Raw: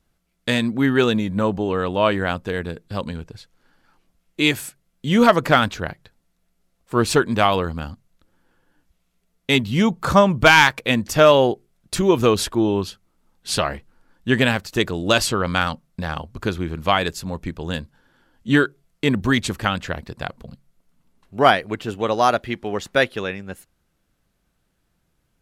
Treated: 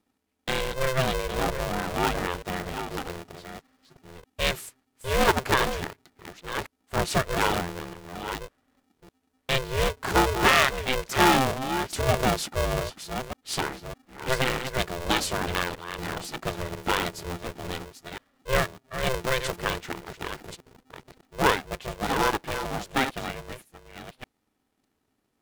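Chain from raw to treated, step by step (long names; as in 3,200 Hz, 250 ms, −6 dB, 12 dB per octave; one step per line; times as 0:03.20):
delay that plays each chunk backwards 606 ms, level −8.5 dB
ring modulator with a square carrier 260 Hz
level −7.5 dB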